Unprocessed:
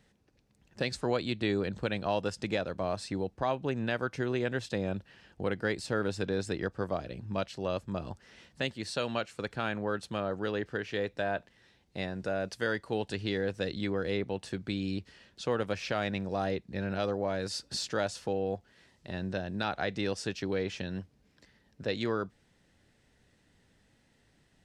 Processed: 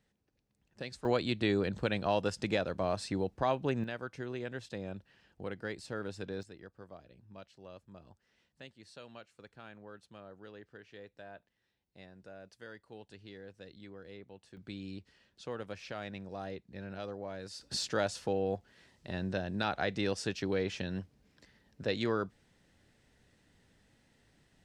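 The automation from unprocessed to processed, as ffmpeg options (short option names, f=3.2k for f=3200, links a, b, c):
-af "asetnsamples=n=441:p=0,asendcmd='1.05 volume volume 0dB;3.84 volume volume -8.5dB;6.43 volume volume -18dB;14.57 volume volume -10dB;17.61 volume volume -0.5dB',volume=-10dB"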